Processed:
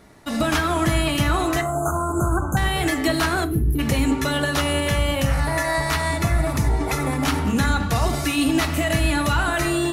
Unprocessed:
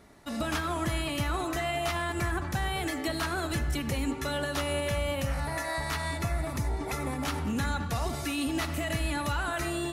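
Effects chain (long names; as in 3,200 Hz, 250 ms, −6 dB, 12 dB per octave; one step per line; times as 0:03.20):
0:03.44–0:03.79: gain on a spectral selection 510–10,000 Hz −29 dB
in parallel at −4.5 dB: dead-zone distortion −49 dBFS
0:01.61–0:02.57: on the sum: linear-phase brick-wall band-stop 1,600–6,100 Hz
rectangular room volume 300 cubic metres, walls furnished, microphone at 0.59 metres
level +5.5 dB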